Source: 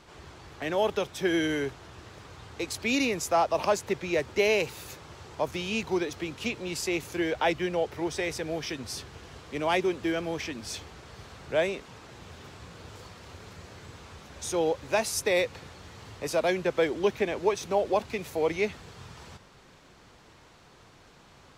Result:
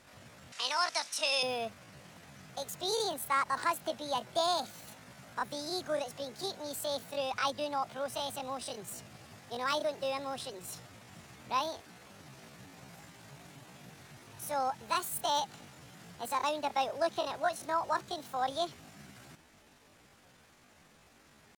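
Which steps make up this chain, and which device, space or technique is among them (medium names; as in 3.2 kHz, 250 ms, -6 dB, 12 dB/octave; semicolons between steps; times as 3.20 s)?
chipmunk voice (pitch shift +8.5 st); 0.52–1.43 s: frequency weighting ITU-R 468; trim -6 dB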